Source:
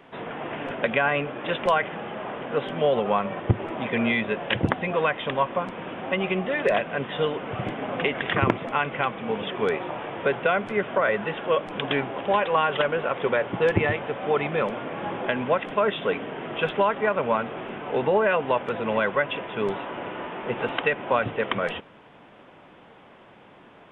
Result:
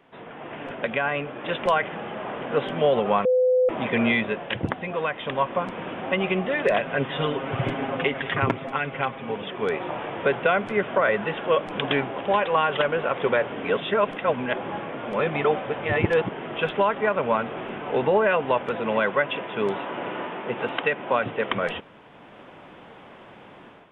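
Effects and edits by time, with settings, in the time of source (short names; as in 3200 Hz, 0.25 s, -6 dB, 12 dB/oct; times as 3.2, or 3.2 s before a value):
3.25–3.69 bleep 507 Hz -17.5 dBFS
6.82–9.36 comb 7.4 ms, depth 73%
13.52–16.3 reverse
18.71–21.5 HPF 120 Hz
whole clip: AGC; gain -7 dB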